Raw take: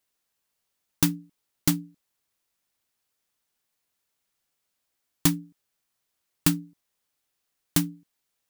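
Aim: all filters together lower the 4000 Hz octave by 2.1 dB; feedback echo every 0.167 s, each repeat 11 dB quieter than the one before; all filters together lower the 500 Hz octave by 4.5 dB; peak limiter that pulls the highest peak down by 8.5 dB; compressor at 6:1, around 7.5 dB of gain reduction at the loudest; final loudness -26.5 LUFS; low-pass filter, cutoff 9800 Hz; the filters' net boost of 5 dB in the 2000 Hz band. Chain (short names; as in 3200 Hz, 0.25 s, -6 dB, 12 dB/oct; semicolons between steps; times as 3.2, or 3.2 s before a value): LPF 9800 Hz; bell 500 Hz -8.5 dB; bell 2000 Hz +8 dB; bell 4000 Hz -5 dB; compressor 6:1, threshold -27 dBFS; limiter -17.5 dBFS; feedback echo 0.167 s, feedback 28%, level -11 dB; gain +15 dB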